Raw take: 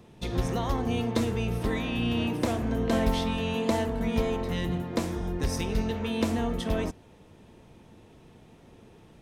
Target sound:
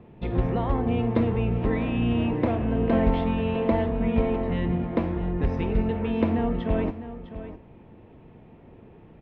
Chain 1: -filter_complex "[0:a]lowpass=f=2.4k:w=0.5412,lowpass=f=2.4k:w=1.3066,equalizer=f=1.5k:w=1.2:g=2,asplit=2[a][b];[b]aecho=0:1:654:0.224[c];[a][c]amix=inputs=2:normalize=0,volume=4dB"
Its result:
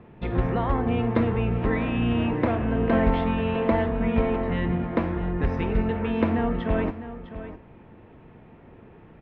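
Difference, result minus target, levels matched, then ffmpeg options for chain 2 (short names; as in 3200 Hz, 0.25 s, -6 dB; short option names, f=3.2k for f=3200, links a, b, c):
2000 Hz band +4.5 dB
-filter_complex "[0:a]lowpass=f=2.4k:w=0.5412,lowpass=f=2.4k:w=1.3066,equalizer=f=1.5k:w=1.2:g=-5,asplit=2[a][b];[b]aecho=0:1:654:0.224[c];[a][c]amix=inputs=2:normalize=0,volume=4dB"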